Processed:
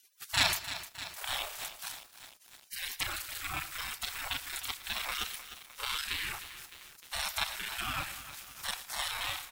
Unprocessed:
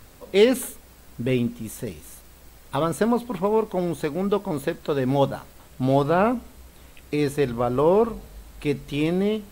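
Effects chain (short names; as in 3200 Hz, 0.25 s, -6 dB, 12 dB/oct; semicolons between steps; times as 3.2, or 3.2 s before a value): local time reversal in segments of 31 ms; low shelf 76 Hz -11.5 dB; in parallel at -2.5 dB: compressor, threshold -37 dBFS, peak gain reduction 22 dB; on the sum: spectral gate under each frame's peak -30 dB weak; on a send: feedback echo 0.114 s, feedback 43%, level -17 dB; on the sum: lo-fi delay 0.305 s, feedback 80%, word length 9-bit, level -12 dB; gain +9 dB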